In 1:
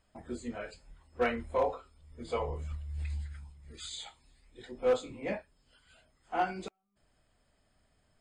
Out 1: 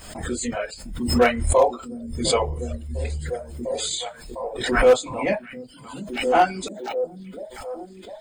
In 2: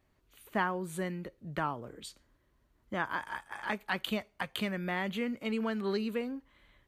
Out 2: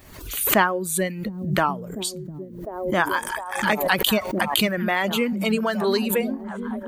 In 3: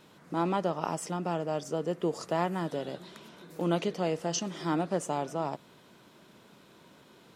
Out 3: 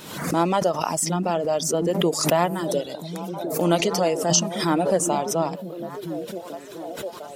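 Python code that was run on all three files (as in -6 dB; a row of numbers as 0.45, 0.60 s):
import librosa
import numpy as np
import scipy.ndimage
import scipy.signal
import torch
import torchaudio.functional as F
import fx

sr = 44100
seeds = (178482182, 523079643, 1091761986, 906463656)

p1 = fx.dynamic_eq(x, sr, hz=620.0, q=2.6, threshold_db=-46.0, ratio=4.0, max_db=4)
p2 = fx.dereverb_blind(p1, sr, rt60_s=1.7)
p3 = fx.high_shelf(p2, sr, hz=5300.0, db=12.0)
p4 = p3 + fx.echo_stepped(p3, sr, ms=703, hz=180.0, octaves=0.7, feedback_pct=70, wet_db=-4.5, dry=0)
p5 = fx.pre_swell(p4, sr, db_per_s=63.0)
y = p5 * 10.0 ** (-24 / 20.0) / np.sqrt(np.mean(np.square(p5)))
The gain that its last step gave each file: +10.5, +11.0, +7.5 dB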